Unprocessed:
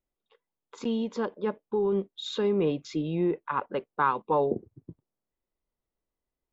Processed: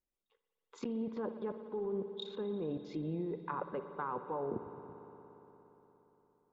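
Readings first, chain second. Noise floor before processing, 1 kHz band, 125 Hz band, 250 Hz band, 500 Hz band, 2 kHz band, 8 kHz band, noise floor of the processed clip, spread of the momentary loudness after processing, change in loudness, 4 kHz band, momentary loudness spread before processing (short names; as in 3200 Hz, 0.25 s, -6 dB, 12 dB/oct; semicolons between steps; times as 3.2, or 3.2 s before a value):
under -85 dBFS, -12.0 dB, -9.0 dB, -9.5 dB, -10.5 dB, -14.0 dB, n/a, under -85 dBFS, 13 LU, -10.5 dB, -11.5 dB, 8 LU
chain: level quantiser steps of 19 dB; treble ducked by the level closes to 1300 Hz, closed at -35.5 dBFS; spring tank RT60 4 s, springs 58 ms, chirp 35 ms, DRR 8.5 dB; gain +1 dB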